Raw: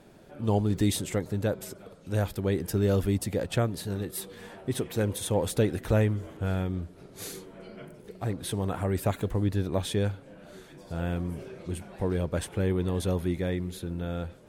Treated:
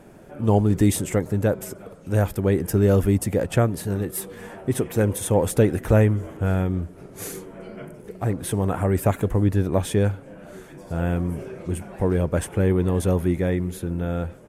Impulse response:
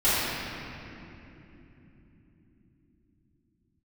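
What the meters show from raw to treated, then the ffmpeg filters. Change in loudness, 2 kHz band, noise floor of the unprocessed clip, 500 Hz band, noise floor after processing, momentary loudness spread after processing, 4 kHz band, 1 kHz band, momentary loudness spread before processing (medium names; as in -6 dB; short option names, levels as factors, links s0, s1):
+7.0 dB, +5.5 dB, -52 dBFS, +7.0 dB, -45 dBFS, 17 LU, -1.0 dB, +6.5 dB, 17 LU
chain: -af "equalizer=f=4000:w=1.6:g=-10.5,aresample=32000,aresample=44100,volume=2.24"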